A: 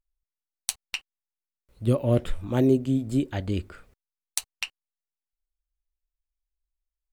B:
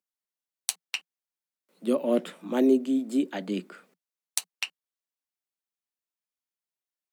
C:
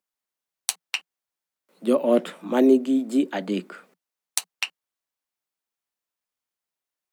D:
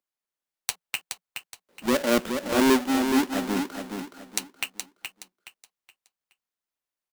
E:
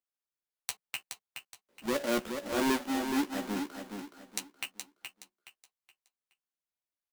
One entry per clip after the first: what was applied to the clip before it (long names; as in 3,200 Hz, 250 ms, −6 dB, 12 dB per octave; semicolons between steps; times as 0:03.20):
Butterworth high-pass 170 Hz 96 dB per octave
parametric band 940 Hz +4 dB 2.3 octaves; level +3 dB
each half-wave held at its own peak; repeating echo 421 ms, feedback 32%, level −6.5 dB; level −6.5 dB
double-tracking delay 14 ms −6.5 dB; level −8.5 dB